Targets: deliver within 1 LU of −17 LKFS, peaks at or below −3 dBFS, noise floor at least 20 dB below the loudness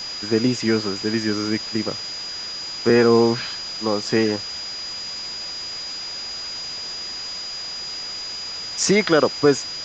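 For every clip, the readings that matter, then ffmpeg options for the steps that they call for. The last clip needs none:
interfering tone 4,900 Hz; level of the tone −29 dBFS; background noise floor −31 dBFS; target noise floor −43 dBFS; integrated loudness −22.5 LKFS; sample peak −3.0 dBFS; target loudness −17.0 LKFS
→ -af "bandreject=frequency=4900:width=30"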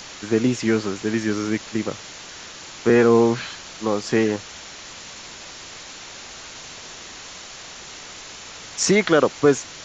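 interfering tone none found; background noise floor −39 dBFS; target noise floor −41 dBFS
→ -af "afftdn=noise_reduction=6:noise_floor=-39"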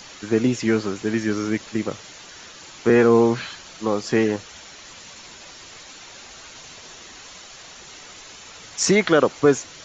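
background noise floor −43 dBFS; integrated loudness −20.5 LKFS; sample peak −3.5 dBFS; target loudness −17.0 LKFS
→ -af "volume=3.5dB,alimiter=limit=-3dB:level=0:latency=1"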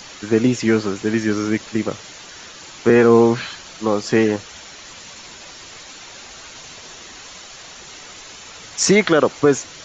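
integrated loudness −17.5 LKFS; sample peak −3.0 dBFS; background noise floor −39 dBFS

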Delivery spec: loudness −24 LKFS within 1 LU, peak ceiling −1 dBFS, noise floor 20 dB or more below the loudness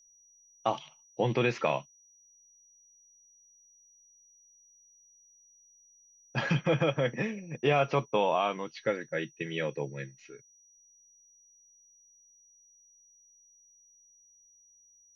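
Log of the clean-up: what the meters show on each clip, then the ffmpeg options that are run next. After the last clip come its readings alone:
interfering tone 5,800 Hz; level of the tone −59 dBFS; integrated loudness −31.0 LKFS; sample peak −13.5 dBFS; target loudness −24.0 LKFS
→ -af "bandreject=frequency=5800:width=30"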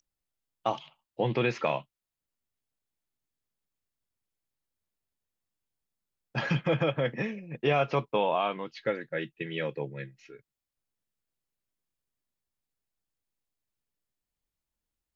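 interfering tone none found; integrated loudness −30.5 LKFS; sample peak −13.5 dBFS; target loudness −24.0 LKFS
→ -af "volume=6.5dB"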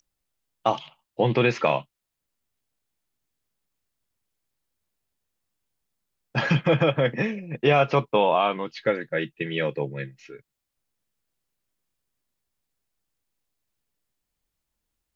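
integrated loudness −24.0 LKFS; sample peak −7.0 dBFS; background noise floor −83 dBFS

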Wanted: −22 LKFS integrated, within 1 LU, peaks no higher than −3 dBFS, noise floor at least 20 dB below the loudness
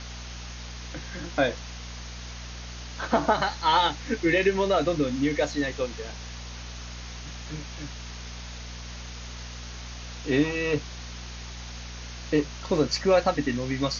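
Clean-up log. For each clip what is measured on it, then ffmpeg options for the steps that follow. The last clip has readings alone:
mains hum 60 Hz; hum harmonics up to 240 Hz; level of the hum −38 dBFS; background noise floor −39 dBFS; target noise floor −47 dBFS; integrated loudness −26.5 LKFS; sample peak −8.5 dBFS; target loudness −22.0 LKFS
→ -af "bandreject=frequency=60:width_type=h:width=4,bandreject=frequency=120:width_type=h:width=4,bandreject=frequency=180:width_type=h:width=4,bandreject=frequency=240:width_type=h:width=4"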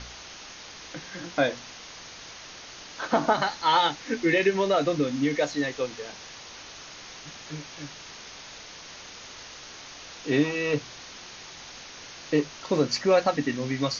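mains hum none found; background noise floor −44 dBFS; target noise floor −46 dBFS
→ -af "afftdn=noise_reduction=6:noise_floor=-44"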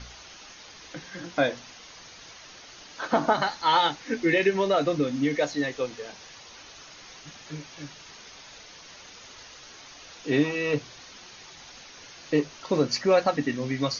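background noise floor −48 dBFS; integrated loudness −25.5 LKFS; sample peak −8.5 dBFS; target loudness −22.0 LKFS
→ -af "volume=3.5dB"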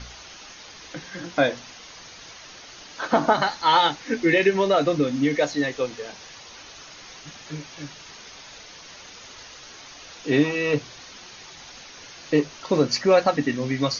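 integrated loudness −22.0 LKFS; sample peak −5.0 dBFS; background noise floor −44 dBFS

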